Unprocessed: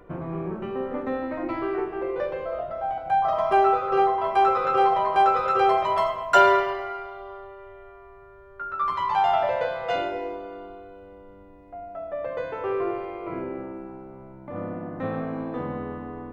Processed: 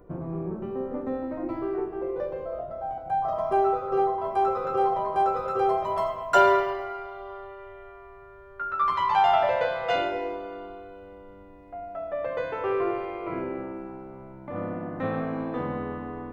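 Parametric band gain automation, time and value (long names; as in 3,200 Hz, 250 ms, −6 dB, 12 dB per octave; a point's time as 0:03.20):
parametric band 2,600 Hz 2.6 octaves
0:05.79 −13 dB
0:06.39 −4.5 dB
0:06.90 −4.5 dB
0:07.49 +2.5 dB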